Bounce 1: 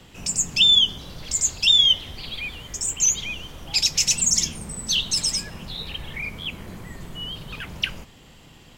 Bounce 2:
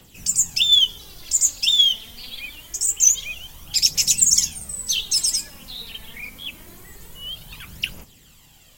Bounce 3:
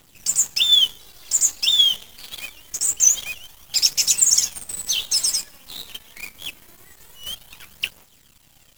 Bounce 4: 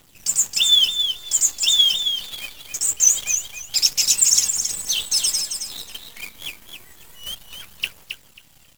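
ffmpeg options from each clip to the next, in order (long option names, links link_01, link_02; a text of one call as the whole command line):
ffmpeg -i in.wav -af "aphaser=in_gain=1:out_gain=1:delay=4.6:decay=0.5:speed=0.25:type=triangular,aemphasis=mode=production:type=75fm,volume=-7.5dB" out.wav
ffmpeg -i in.wav -filter_complex "[0:a]acrossover=split=420[link_01][link_02];[link_01]acompressor=threshold=-48dB:ratio=6[link_03];[link_03][link_02]amix=inputs=2:normalize=0,acrusher=bits=6:dc=4:mix=0:aa=0.000001" out.wav
ffmpeg -i in.wav -af "aecho=1:1:270|540|810:0.447|0.0804|0.0145" out.wav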